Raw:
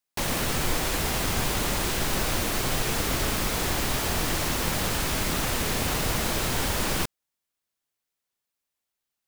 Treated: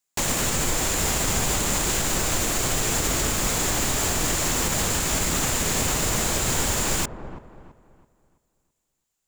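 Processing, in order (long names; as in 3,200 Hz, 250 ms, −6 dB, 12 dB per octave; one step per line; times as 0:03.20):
parametric band 7,200 Hz +13 dB 0.3 octaves
brickwall limiter −16 dBFS, peak gain reduction 5 dB
delay with a low-pass on its return 331 ms, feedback 34%, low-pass 1,000 Hz, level −9 dB
level +2.5 dB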